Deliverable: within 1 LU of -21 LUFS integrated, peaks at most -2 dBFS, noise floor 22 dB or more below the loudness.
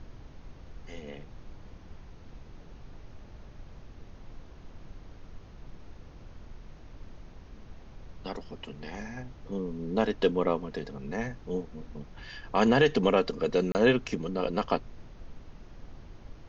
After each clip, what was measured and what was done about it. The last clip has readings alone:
dropouts 1; longest dropout 29 ms; noise floor -50 dBFS; noise floor target -51 dBFS; loudness -29.0 LUFS; peak level -10.5 dBFS; loudness target -21.0 LUFS
-> interpolate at 13.72 s, 29 ms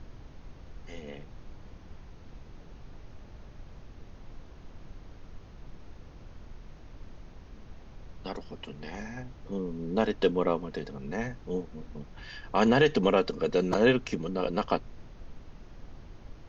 dropouts 0; noise floor -50 dBFS; noise floor target -51 dBFS
-> noise print and reduce 6 dB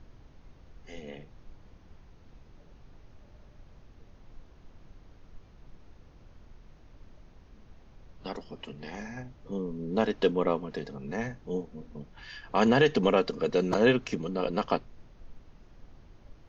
noise floor -56 dBFS; loudness -29.0 LUFS; peak level -10.5 dBFS; loudness target -21.0 LUFS
-> trim +8 dB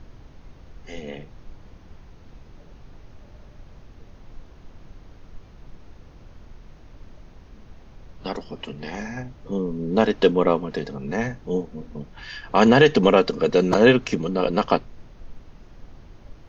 loudness -21.0 LUFS; peak level -2.5 dBFS; noise floor -48 dBFS

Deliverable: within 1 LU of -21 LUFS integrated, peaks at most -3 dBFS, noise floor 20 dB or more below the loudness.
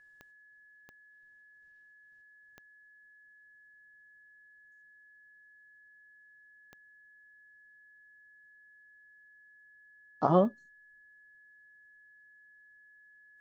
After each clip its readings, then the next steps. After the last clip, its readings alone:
clicks found 5; steady tone 1.7 kHz; tone level -57 dBFS; loudness -28.0 LUFS; peak level -10.5 dBFS; loudness target -21.0 LUFS
-> de-click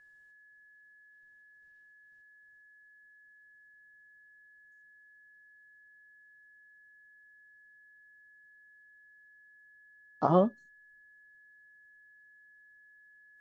clicks found 0; steady tone 1.7 kHz; tone level -57 dBFS
-> band-stop 1.7 kHz, Q 30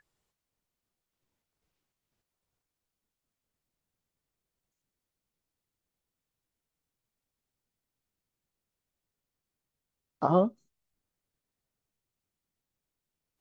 steady tone not found; loudness -28.0 LUFS; peak level -10.5 dBFS; loudness target -21.0 LUFS
-> trim +7 dB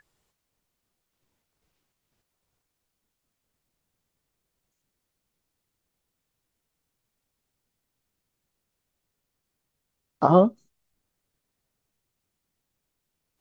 loudness -21.0 LUFS; peak level -3.5 dBFS; noise floor -82 dBFS

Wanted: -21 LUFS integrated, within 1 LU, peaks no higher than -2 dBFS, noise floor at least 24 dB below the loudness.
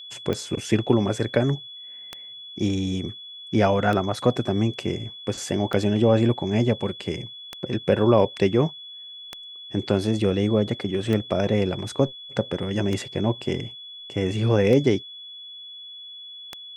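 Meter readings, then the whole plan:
clicks found 10; steady tone 3.4 kHz; tone level -38 dBFS; loudness -24.0 LUFS; peak level -5.5 dBFS; loudness target -21.0 LUFS
-> de-click; band-stop 3.4 kHz, Q 30; trim +3 dB

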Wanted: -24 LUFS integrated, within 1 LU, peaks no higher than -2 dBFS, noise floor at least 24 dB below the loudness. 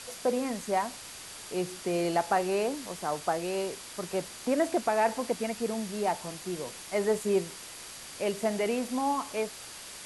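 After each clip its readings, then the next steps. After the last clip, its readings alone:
steady tone 4.7 kHz; tone level -55 dBFS; noise floor -45 dBFS; noise floor target -55 dBFS; loudness -31.0 LUFS; peak level -13.5 dBFS; loudness target -24.0 LUFS
-> band-stop 4.7 kHz, Q 30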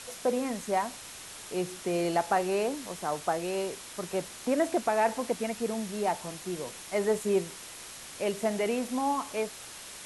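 steady tone not found; noise floor -45 dBFS; noise floor target -55 dBFS
-> noise print and reduce 10 dB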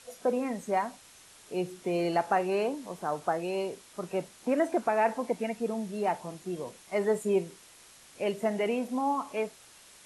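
noise floor -55 dBFS; loudness -31.0 LUFS; peak level -14.0 dBFS; loudness target -24.0 LUFS
-> trim +7 dB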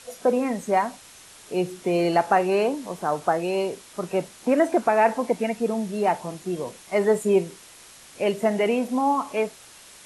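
loudness -24.0 LUFS; peak level -7.0 dBFS; noise floor -48 dBFS

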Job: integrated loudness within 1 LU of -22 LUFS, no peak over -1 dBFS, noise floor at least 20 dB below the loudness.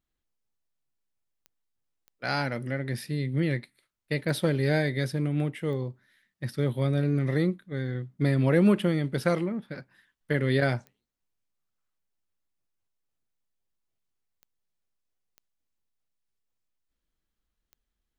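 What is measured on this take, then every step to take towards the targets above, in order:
clicks found 8; loudness -27.5 LUFS; peak level -10.0 dBFS; loudness target -22.0 LUFS
-> de-click; trim +5.5 dB

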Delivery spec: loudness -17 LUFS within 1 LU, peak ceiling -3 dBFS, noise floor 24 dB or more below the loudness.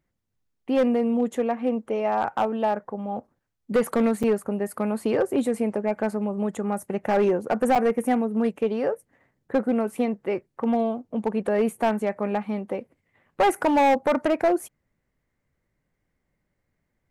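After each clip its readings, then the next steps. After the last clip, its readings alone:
clipped samples 1.4%; clipping level -15.0 dBFS; dropouts 2; longest dropout 6.3 ms; loudness -25.0 LUFS; peak level -15.0 dBFS; loudness target -17.0 LUFS
-> clip repair -15 dBFS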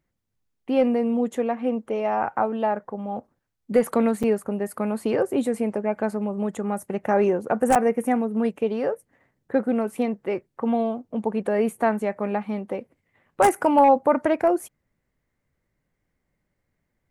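clipped samples 0.0%; dropouts 2; longest dropout 6.3 ms
-> interpolate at 4.23/7.75 s, 6.3 ms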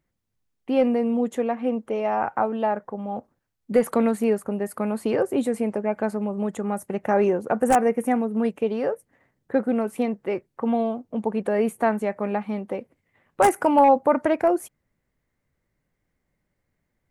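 dropouts 0; loudness -24.0 LUFS; peak level -6.0 dBFS; loudness target -17.0 LUFS
-> trim +7 dB; peak limiter -3 dBFS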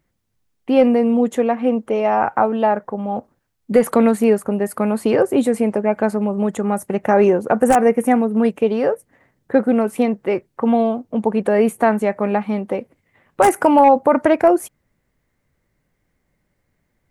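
loudness -17.5 LUFS; peak level -3.0 dBFS; noise floor -70 dBFS

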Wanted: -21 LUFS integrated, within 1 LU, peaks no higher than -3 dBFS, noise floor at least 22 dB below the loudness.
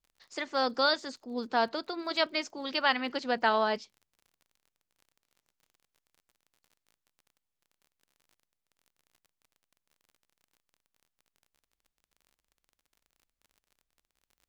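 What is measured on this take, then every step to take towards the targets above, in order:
tick rate 36 per s; loudness -30.0 LUFS; peak level -11.0 dBFS; loudness target -21.0 LUFS
-> de-click; trim +9 dB; peak limiter -3 dBFS

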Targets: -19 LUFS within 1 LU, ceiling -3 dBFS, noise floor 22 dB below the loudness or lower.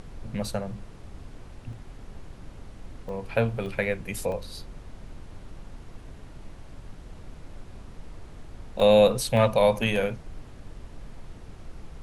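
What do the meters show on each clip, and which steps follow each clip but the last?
dropouts 8; longest dropout 1.3 ms; noise floor -46 dBFS; noise floor target -47 dBFS; loudness -25.0 LUFS; peak level -7.5 dBFS; loudness target -19.0 LUFS
-> interpolate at 0.45/1.73/3.09/3.66/4.32/8.80/9.37/9.96 s, 1.3 ms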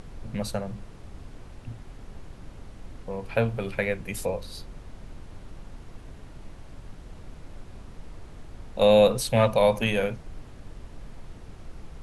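dropouts 0; noise floor -46 dBFS; noise floor target -47 dBFS
-> noise print and reduce 6 dB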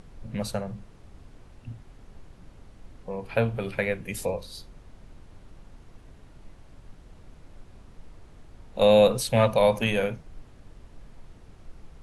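noise floor -52 dBFS; loudness -25.0 LUFS; peak level -7.5 dBFS; loudness target -19.0 LUFS
-> trim +6 dB; peak limiter -3 dBFS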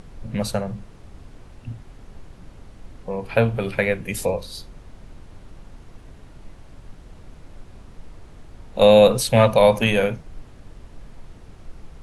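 loudness -19.0 LUFS; peak level -3.0 dBFS; noise floor -46 dBFS

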